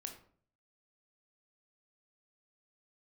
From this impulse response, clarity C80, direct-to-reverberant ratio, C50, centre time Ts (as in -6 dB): 12.5 dB, 4.0 dB, 8.5 dB, 16 ms